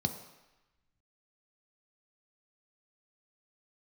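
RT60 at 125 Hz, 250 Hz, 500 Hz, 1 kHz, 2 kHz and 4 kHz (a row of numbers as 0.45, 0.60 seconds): 0.85, 0.85, 0.95, 1.1, 1.2, 1.0 seconds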